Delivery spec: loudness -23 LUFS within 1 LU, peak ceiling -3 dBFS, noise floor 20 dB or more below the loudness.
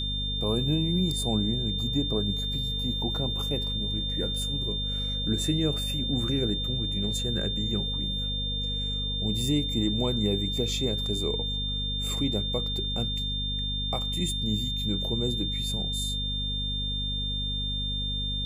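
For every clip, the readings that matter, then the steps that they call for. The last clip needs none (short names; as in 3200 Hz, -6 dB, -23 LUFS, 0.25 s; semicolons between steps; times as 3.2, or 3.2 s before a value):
hum 50 Hz; harmonics up to 250 Hz; hum level -30 dBFS; steady tone 3600 Hz; tone level -30 dBFS; loudness -27.5 LUFS; peak -14.0 dBFS; loudness target -23.0 LUFS
-> notches 50/100/150/200/250 Hz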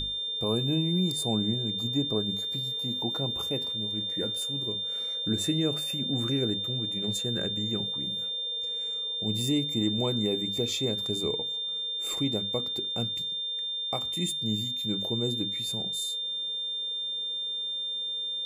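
hum none; steady tone 3600 Hz; tone level -30 dBFS
-> notch 3600 Hz, Q 30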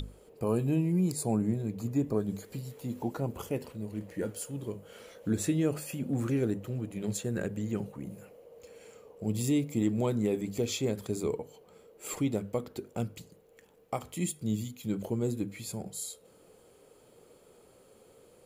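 steady tone none; loudness -33.0 LUFS; peak -16.5 dBFS; loudness target -23.0 LUFS
-> gain +10 dB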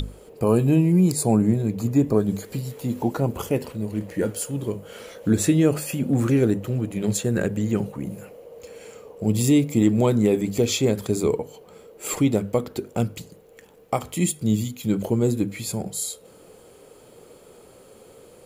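loudness -23.0 LUFS; peak -6.5 dBFS; noise floor -50 dBFS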